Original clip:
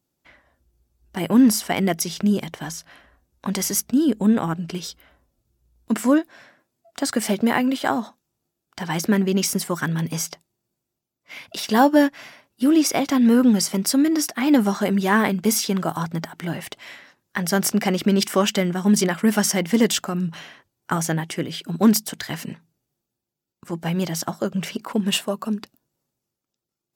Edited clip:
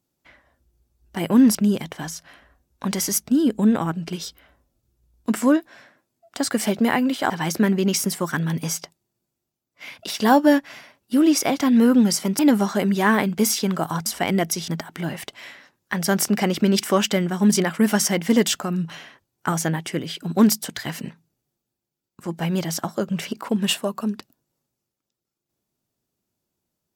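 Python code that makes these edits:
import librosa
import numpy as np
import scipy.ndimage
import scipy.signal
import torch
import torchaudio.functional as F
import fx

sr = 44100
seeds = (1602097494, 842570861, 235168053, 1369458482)

y = fx.edit(x, sr, fx.move(start_s=1.55, length_s=0.62, to_s=16.12),
    fx.cut(start_s=7.92, length_s=0.87),
    fx.cut(start_s=13.88, length_s=0.57), tone=tone)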